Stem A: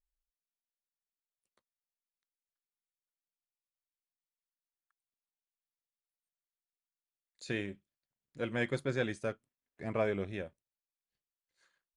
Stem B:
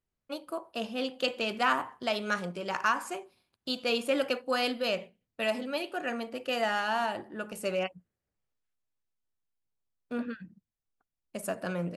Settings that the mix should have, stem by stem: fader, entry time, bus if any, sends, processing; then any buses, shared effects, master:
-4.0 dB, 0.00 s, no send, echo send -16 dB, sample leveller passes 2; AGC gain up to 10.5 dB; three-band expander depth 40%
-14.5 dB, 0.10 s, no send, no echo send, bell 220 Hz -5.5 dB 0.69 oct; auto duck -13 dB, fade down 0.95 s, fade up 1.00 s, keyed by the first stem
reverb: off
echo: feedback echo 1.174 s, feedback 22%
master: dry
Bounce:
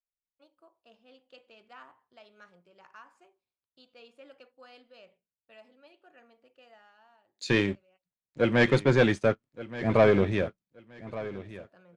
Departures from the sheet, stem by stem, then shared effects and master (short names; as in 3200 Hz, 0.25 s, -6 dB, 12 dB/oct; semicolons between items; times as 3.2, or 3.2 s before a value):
stem B -14.5 dB -> -23.0 dB; master: extra air absorption 84 m